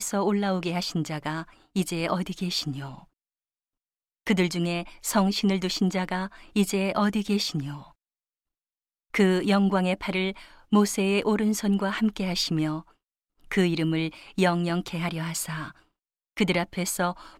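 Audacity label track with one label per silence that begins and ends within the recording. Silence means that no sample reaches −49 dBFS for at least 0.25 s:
3.040000	4.260000	silence
7.910000	9.140000	silence
12.910000	13.410000	silence
15.790000	16.370000	silence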